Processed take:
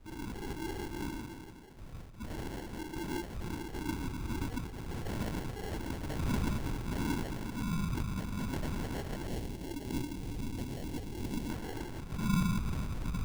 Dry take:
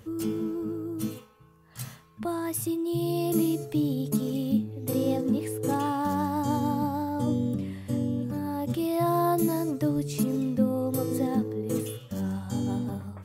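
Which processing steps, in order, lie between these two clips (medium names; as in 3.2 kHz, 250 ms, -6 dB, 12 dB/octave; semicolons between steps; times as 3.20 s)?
octave divider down 2 oct, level -1 dB; compression 6:1, threshold -35 dBFS, peak gain reduction 17.5 dB; reverberation RT60 2.1 s, pre-delay 3 ms, DRR -7 dB; flange 0.82 Hz, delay 8 ms, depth 5 ms, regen -34%; tilt EQ -1.5 dB/octave; LPC vocoder at 8 kHz whisper; sample-and-hold 36×; 9.27–11.50 s: peaking EQ 1.3 kHz -11 dB 1 oct; trim -8 dB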